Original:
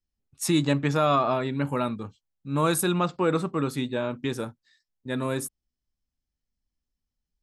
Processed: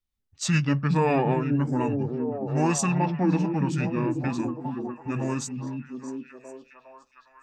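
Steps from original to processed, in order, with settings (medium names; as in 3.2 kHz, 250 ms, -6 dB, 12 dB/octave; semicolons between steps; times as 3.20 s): formant shift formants -6 st; repeats whose band climbs or falls 411 ms, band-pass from 190 Hz, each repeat 0.7 oct, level -1 dB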